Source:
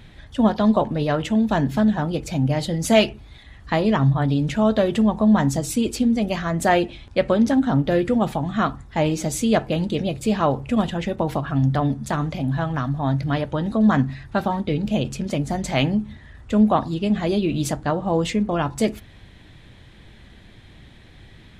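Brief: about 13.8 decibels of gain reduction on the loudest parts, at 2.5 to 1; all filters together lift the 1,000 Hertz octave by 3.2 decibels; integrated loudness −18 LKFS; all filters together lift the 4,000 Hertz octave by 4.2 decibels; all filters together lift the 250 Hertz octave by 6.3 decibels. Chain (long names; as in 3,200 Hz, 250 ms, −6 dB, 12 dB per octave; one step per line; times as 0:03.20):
parametric band 250 Hz +7.5 dB
parametric band 1,000 Hz +3.5 dB
parametric band 4,000 Hz +5.5 dB
downward compressor 2.5 to 1, threshold −28 dBFS
level +9.5 dB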